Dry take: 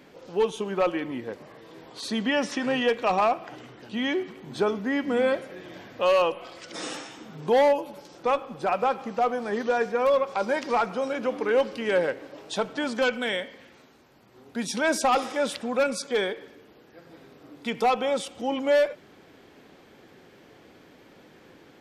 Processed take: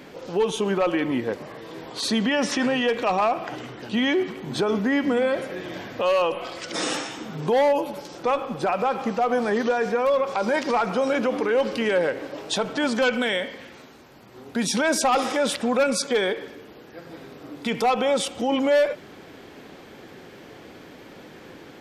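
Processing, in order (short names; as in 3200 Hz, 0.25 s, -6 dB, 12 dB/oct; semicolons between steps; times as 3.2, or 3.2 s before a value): limiter -23.5 dBFS, peak gain reduction 9.5 dB; gain +8.5 dB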